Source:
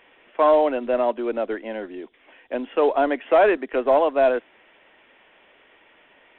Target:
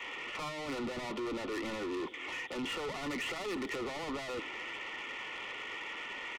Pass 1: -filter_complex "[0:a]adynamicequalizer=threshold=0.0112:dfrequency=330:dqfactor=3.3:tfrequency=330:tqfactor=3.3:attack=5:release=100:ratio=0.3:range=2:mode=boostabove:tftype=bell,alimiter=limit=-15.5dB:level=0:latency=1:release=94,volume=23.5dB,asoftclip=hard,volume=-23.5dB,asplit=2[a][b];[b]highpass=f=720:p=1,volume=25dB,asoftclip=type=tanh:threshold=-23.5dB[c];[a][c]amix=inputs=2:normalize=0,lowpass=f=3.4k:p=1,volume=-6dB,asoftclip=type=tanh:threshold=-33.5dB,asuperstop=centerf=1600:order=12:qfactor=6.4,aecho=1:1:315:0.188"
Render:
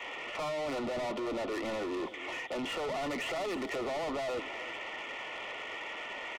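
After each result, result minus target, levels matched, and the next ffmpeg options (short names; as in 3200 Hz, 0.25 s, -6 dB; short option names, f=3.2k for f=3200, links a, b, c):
echo-to-direct +7 dB; 500 Hz band +3.0 dB
-filter_complex "[0:a]adynamicequalizer=threshold=0.0112:dfrequency=330:dqfactor=3.3:tfrequency=330:tqfactor=3.3:attack=5:release=100:ratio=0.3:range=2:mode=boostabove:tftype=bell,alimiter=limit=-15.5dB:level=0:latency=1:release=94,volume=23.5dB,asoftclip=hard,volume=-23.5dB,asplit=2[a][b];[b]highpass=f=720:p=1,volume=25dB,asoftclip=type=tanh:threshold=-23.5dB[c];[a][c]amix=inputs=2:normalize=0,lowpass=f=3.4k:p=1,volume=-6dB,asoftclip=type=tanh:threshold=-33.5dB,asuperstop=centerf=1600:order=12:qfactor=6.4,aecho=1:1:315:0.0841"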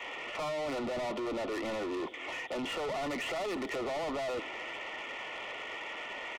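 500 Hz band +3.0 dB
-filter_complex "[0:a]adynamicequalizer=threshold=0.0112:dfrequency=330:dqfactor=3.3:tfrequency=330:tqfactor=3.3:attack=5:release=100:ratio=0.3:range=2:mode=boostabove:tftype=bell,alimiter=limit=-15.5dB:level=0:latency=1:release=94,volume=23.5dB,asoftclip=hard,volume=-23.5dB,asplit=2[a][b];[b]highpass=f=720:p=1,volume=25dB,asoftclip=type=tanh:threshold=-23.5dB[c];[a][c]amix=inputs=2:normalize=0,lowpass=f=3.4k:p=1,volume=-6dB,asoftclip=type=tanh:threshold=-33.5dB,asuperstop=centerf=1600:order=12:qfactor=6.4,equalizer=f=650:t=o:w=0.49:g=-12.5,aecho=1:1:315:0.0841"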